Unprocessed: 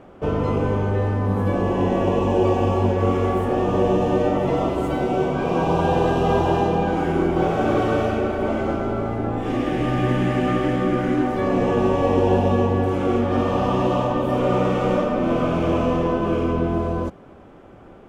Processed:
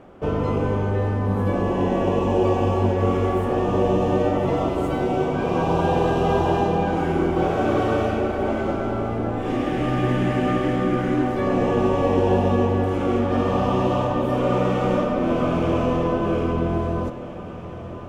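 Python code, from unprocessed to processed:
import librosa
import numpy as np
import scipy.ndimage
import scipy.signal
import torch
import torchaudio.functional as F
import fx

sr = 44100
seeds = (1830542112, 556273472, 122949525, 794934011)

p1 = x + fx.echo_diffused(x, sr, ms=1025, feedback_pct=72, wet_db=-16, dry=0)
y = p1 * librosa.db_to_amplitude(-1.0)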